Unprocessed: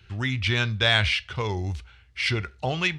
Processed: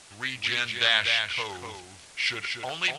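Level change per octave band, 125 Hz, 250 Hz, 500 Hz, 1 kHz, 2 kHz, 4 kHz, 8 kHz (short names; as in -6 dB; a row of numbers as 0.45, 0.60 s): -19.5, -12.0, -6.5, -2.5, -0.5, +0.5, +2.5 dB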